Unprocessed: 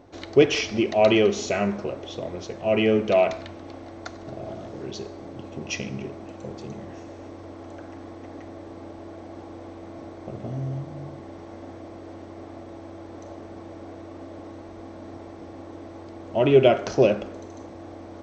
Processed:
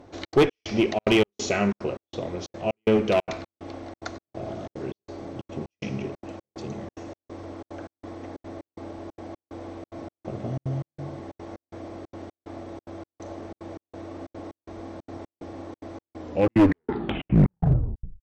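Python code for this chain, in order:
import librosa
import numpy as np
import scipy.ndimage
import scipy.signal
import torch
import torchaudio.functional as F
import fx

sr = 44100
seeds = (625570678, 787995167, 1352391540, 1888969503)

y = fx.tape_stop_end(x, sr, length_s=2.11)
y = fx.dynamic_eq(y, sr, hz=630.0, q=3.9, threshold_db=-37.0, ratio=4.0, max_db=-5)
y = fx.clip_asym(y, sr, top_db=-19.5, bottom_db=-10.5)
y = fx.step_gate(y, sr, bpm=183, pattern='xxx.xx..x', floor_db=-60.0, edge_ms=4.5)
y = y * 10.0 ** (2.0 / 20.0)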